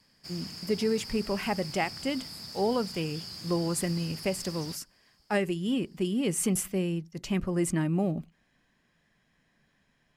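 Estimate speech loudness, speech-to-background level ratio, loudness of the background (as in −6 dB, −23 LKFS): −31.0 LKFS, 9.0 dB, −40.0 LKFS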